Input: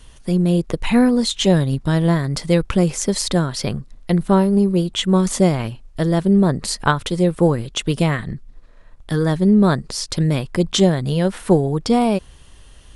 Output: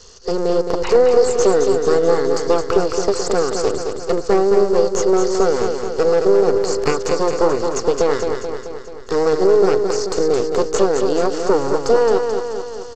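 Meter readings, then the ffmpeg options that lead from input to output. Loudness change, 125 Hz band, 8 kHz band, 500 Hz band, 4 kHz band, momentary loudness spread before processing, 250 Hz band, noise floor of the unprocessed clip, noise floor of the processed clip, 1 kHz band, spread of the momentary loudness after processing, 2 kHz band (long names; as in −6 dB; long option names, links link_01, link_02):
+1.0 dB, −14.5 dB, 0.0 dB, +7.5 dB, −4.5 dB, 8 LU, −7.0 dB, −45 dBFS, −31 dBFS, +3.0 dB, 8 LU, −1.5 dB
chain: -filter_complex "[0:a]lowpass=frequency=5000:width=0.5412,lowpass=frequency=5000:width=1.3066,aresample=16000,aeval=exprs='abs(val(0))':channel_layout=same,aresample=44100,acrossover=split=2900[link_01][link_02];[link_02]acompressor=threshold=-49dB:ratio=4:attack=1:release=60[link_03];[link_01][link_03]amix=inputs=2:normalize=0,superequalizer=7b=3.98:10b=1.58:13b=0.355,acompressor=threshold=-13dB:ratio=2.5,aexciter=amount=9.6:drive=8.3:freq=3800,equalizer=frequency=870:width=0.33:gain=9,asplit=2[link_04][link_05];[link_05]aecho=0:1:217|434|651|868|1085|1302|1519|1736:0.501|0.296|0.174|0.103|0.0607|0.0358|0.0211|0.0125[link_06];[link_04][link_06]amix=inputs=2:normalize=0,volume=-5.5dB"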